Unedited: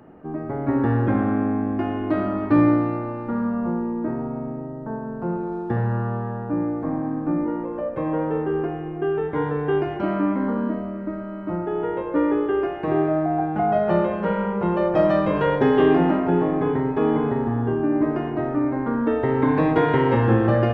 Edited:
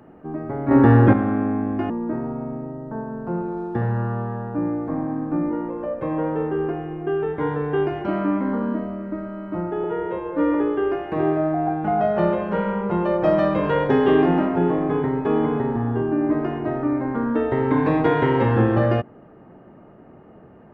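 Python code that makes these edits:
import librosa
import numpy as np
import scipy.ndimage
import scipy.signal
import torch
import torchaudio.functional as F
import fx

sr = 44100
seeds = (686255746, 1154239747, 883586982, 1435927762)

y = fx.edit(x, sr, fx.clip_gain(start_s=0.71, length_s=0.42, db=7.5),
    fx.cut(start_s=1.9, length_s=1.95),
    fx.stretch_span(start_s=11.79, length_s=0.47, factor=1.5), tone=tone)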